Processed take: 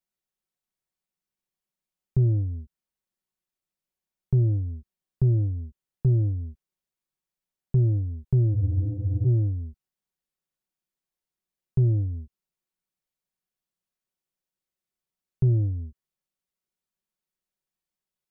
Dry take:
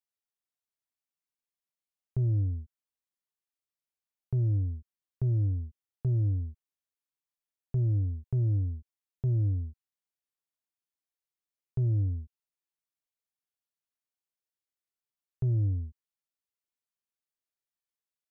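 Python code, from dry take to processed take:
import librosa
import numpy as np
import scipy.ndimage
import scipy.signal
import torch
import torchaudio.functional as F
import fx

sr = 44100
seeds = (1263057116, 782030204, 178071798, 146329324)

y = fx.tracing_dist(x, sr, depth_ms=0.042)
y = fx.low_shelf(y, sr, hz=440.0, db=9.0)
y = y + 0.6 * np.pad(y, (int(5.4 * sr / 1000.0), 0))[:len(y)]
y = fx.spec_freeze(y, sr, seeds[0], at_s=8.56, hold_s=0.7)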